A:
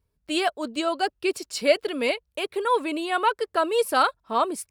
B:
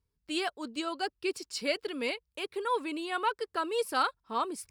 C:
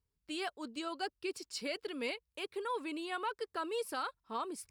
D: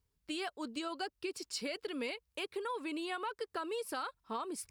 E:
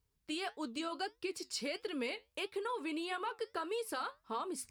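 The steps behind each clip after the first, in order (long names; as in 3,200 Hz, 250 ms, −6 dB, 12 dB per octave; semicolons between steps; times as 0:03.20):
thirty-one-band graphic EQ 630 Hz −9 dB, 5,000 Hz +4 dB, 12,500 Hz −4 dB; reversed playback; upward compression, threshold −44 dBFS; reversed playback; level −7 dB
brickwall limiter −24 dBFS, peak gain reduction 8 dB; level −4.5 dB
downward compressor, threshold −40 dBFS, peak gain reduction 7.5 dB; level +4.5 dB
flanger 1.6 Hz, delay 6.2 ms, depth 4.8 ms, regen −74%; level +4.5 dB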